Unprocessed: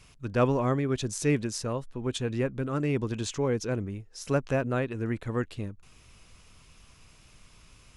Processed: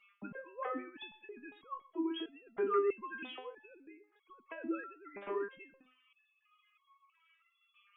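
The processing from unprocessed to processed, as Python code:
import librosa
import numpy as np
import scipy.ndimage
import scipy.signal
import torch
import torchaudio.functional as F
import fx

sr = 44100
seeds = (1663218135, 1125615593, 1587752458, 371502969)

y = fx.sine_speech(x, sr)
y = fx.over_compress(y, sr, threshold_db=-30.0, ratio=-0.5)
y = y + 10.0 ** (-19.5 / 20.0) * np.pad(y, (int(124 * sr / 1000.0), 0))[:len(y)]
y = fx.resonator_held(y, sr, hz=3.1, low_hz=200.0, high_hz=1100.0)
y = F.gain(torch.from_numpy(y), 7.5).numpy()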